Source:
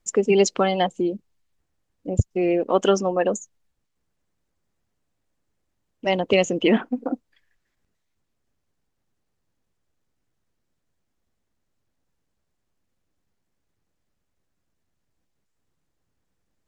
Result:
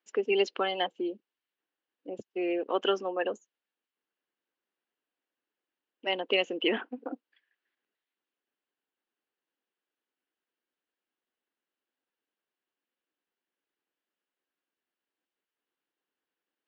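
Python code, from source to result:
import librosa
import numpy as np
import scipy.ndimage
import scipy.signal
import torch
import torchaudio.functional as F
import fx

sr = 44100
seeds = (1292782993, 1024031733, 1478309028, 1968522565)

y = fx.cabinet(x, sr, low_hz=290.0, low_slope=24, high_hz=4300.0, hz=(620.0, 1600.0, 2900.0), db=(-4, 5, 7))
y = F.gain(torch.from_numpy(y), -8.0).numpy()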